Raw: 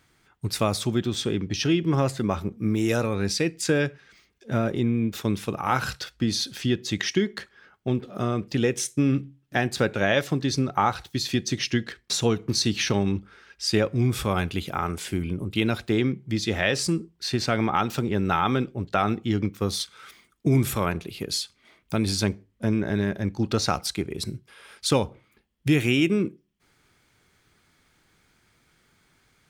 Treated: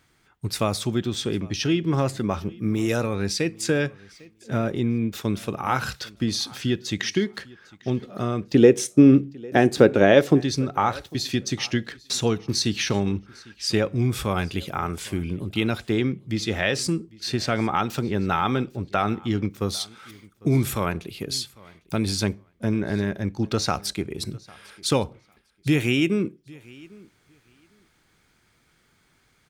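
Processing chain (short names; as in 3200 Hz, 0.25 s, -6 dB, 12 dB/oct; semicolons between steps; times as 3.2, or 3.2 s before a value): 8.54–10.41 bell 370 Hz +11.5 dB 2 oct; feedback echo 0.801 s, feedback 17%, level -23.5 dB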